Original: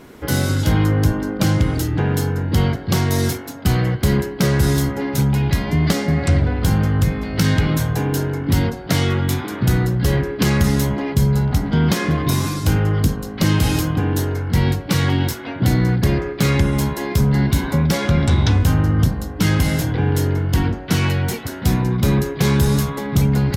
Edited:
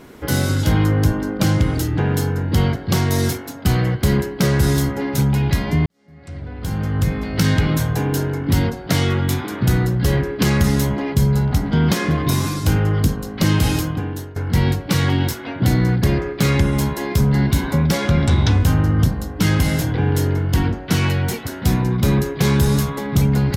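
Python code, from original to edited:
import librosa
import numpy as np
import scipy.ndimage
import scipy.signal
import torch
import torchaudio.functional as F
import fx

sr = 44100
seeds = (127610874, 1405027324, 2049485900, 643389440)

y = fx.edit(x, sr, fx.fade_in_span(start_s=5.86, length_s=1.29, curve='qua'),
    fx.fade_out_to(start_s=13.68, length_s=0.68, floor_db=-17.5), tone=tone)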